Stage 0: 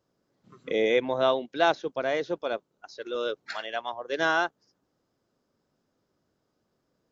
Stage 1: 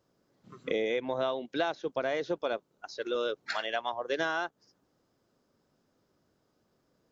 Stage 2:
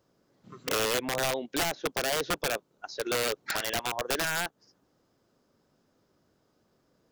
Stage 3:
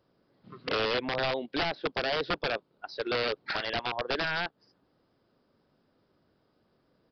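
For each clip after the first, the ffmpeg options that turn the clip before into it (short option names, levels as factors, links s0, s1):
-af "acompressor=threshold=0.0355:ratio=10,volume=1.33"
-af "aeval=exprs='(mod(16.8*val(0)+1,2)-1)/16.8':c=same,volume=1.41"
-af "aresample=11025,aresample=44100"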